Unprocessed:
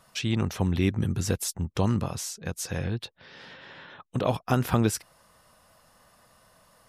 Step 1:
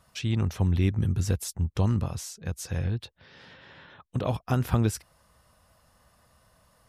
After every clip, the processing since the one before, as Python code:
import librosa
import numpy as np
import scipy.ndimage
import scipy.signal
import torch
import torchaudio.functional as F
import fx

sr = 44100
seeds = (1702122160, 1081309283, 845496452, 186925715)

y = fx.peak_eq(x, sr, hz=63.0, db=12.0, octaves=1.8)
y = y * 10.0 ** (-4.5 / 20.0)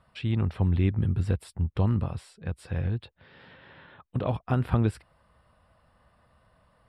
y = scipy.signal.lfilter(np.full(7, 1.0 / 7), 1.0, x)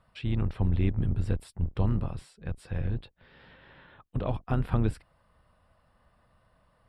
y = fx.octave_divider(x, sr, octaves=2, level_db=-3.0)
y = y * 10.0 ** (-3.0 / 20.0)